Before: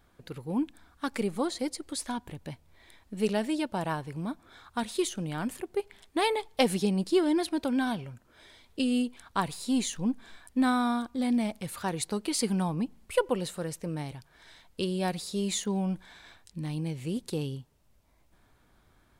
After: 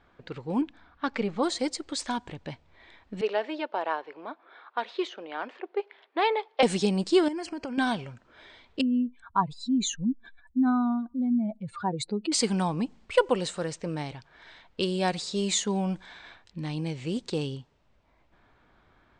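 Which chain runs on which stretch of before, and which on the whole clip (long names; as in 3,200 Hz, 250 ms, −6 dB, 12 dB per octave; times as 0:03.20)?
0:00.61–0:01.43: high-frequency loss of the air 180 metres + notch filter 370 Hz, Q 6
0:03.21–0:06.63: high-pass filter 380 Hz 24 dB per octave + high-frequency loss of the air 300 metres
0:07.28–0:07.78: Butterworth band-reject 3,700 Hz, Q 2.9 + downward compressor 12 to 1, threshold −33 dBFS
0:08.81–0:12.32: expanding power law on the bin magnitudes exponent 2.2 + linearly interpolated sample-rate reduction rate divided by 2×
whole clip: low-shelf EQ 270 Hz −7 dB; low-pass that shuts in the quiet parts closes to 2,900 Hz, open at −28.5 dBFS; Butterworth low-pass 8,700 Hz 72 dB per octave; level +5.5 dB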